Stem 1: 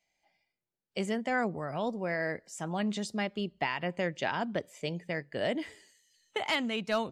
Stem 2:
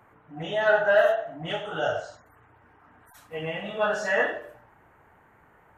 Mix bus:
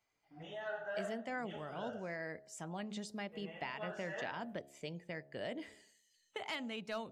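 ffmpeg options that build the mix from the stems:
ffmpeg -i stem1.wav -i stem2.wav -filter_complex "[0:a]bandreject=frequency=70.38:width_type=h:width=4,bandreject=frequency=140.76:width_type=h:width=4,bandreject=frequency=211.14:width_type=h:width=4,bandreject=frequency=281.52:width_type=h:width=4,bandreject=frequency=351.9:width_type=h:width=4,bandreject=frequency=422.28:width_type=h:width=4,bandreject=frequency=492.66:width_type=h:width=4,bandreject=frequency=563.04:width_type=h:width=4,bandreject=frequency=633.42:width_type=h:width=4,bandreject=frequency=703.8:width_type=h:width=4,bandreject=frequency=774.18:width_type=h:width=4,bandreject=frequency=844.56:width_type=h:width=4,volume=-5.5dB[link_01];[1:a]agate=range=-15dB:threshold=-49dB:ratio=16:detection=peak,volume=-16dB[link_02];[link_01][link_02]amix=inputs=2:normalize=0,acompressor=threshold=-47dB:ratio=1.5" out.wav

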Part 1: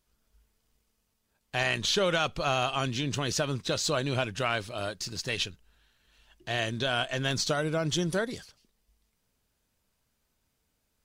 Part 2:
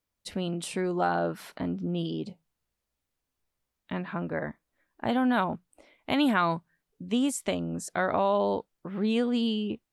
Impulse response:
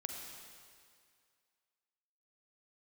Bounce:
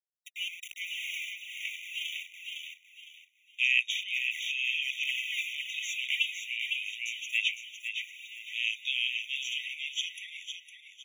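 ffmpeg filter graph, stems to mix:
-filter_complex "[0:a]adynamicequalizer=threshold=0.00708:dfrequency=3400:dqfactor=0.7:tfrequency=3400:tqfactor=0.7:attack=5:release=100:ratio=0.375:range=2.5:mode=cutabove:tftype=highshelf,adelay=2050,volume=-4.5dB,asplit=2[link_01][link_02];[link_02]volume=-7.5dB[link_03];[1:a]aeval=exprs='val(0)*gte(abs(val(0)),0.0282)':channel_layout=same,aphaser=in_gain=1:out_gain=1:delay=3.4:decay=0.58:speed=1.2:type=sinusoidal,volume=-4dB,afade=type=out:start_time=5.94:duration=0.5:silence=0.266073,asplit=3[link_04][link_05][link_06];[link_05]volume=-4.5dB[link_07];[link_06]apad=whole_len=577700[link_08];[link_01][link_08]sidechaincompress=threshold=-36dB:ratio=8:attack=11:release=562[link_09];[link_03][link_07]amix=inputs=2:normalize=0,aecho=0:1:508|1016|1524|2032:1|0.31|0.0961|0.0298[link_10];[link_09][link_04][link_10]amix=inputs=3:normalize=0,highpass=frequency=2500:width_type=q:width=4.9,afftfilt=real='re*eq(mod(floor(b*sr/1024/1900),2),1)':imag='im*eq(mod(floor(b*sr/1024/1900),2),1)':win_size=1024:overlap=0.75"

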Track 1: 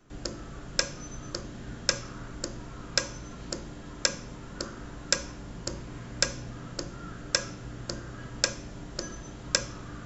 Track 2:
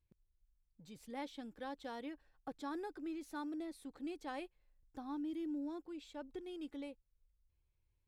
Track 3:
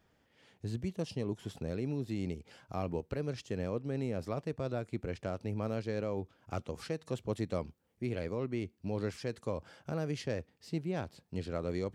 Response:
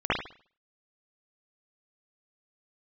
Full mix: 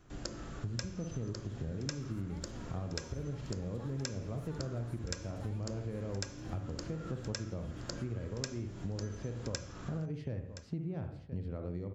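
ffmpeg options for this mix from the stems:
-filter_complex "[0:a]volume=-2.5dB,asplit=2[link_01][link_02];[link_02]volume=-24dB[link_03];[1:a]highshelf=frequency=5900:gain=9.5,adelay=1150,volume=-6dB,asplit=2[link_04][link_05];[link_05]volume=-7dB[link_06];[2:a]aemphasis=mode=reproduction:type=riaa,volume=-4dB,asplit=3[link_07][link_08][link_09];[link_08]volume=-19.5dB[link_10];[link_09]volume=-16.5dB[link_11];[3:a]atrim=start_sample=2205[link_12];[link_10][link_12]afir=irnorm=-1:irlink=0[link_13];[link_03][link_06][link_11]amix=inputs=3:normalize=0,aecho=0:1:1021:1[link_14];[link_01][link_04][link_07][link_13][link_14]amix=inputs=5:normalize=0,acompressor=threshold=-36dB:ratio=5"

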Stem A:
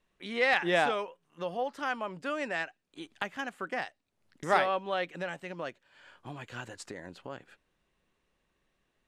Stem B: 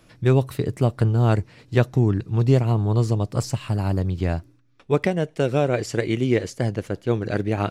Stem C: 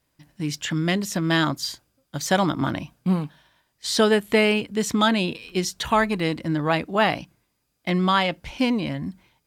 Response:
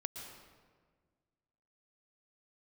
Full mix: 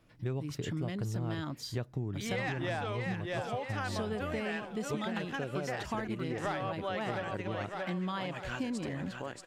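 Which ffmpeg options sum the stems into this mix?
-filter_complex "[0:a]asoftclip=type=tanh:threshold=-16.5dB,adelay=1950,volume=2dB,asplit=2[link_01][link_02];[link_02]volume=-7.5dB[link_03];[1:a]bass=frequency=250:gain=1,treble=frequency=4000:gain=-6,volume=-11.5dB[link_04];[2:a]lowshelf=frequency=430:gain=7,volume=-13.5dB[link_05];[link_03]aecho=0:1:630|1260|1890|2520|3150|3780:1|0.41|0.168|0.0689|0.0283|0.0116[link_06];[link_01][link_04][link_05][link_06]amix=inputs=4:normalize=0,acompressor=threshold=-32dB:ratio=6"

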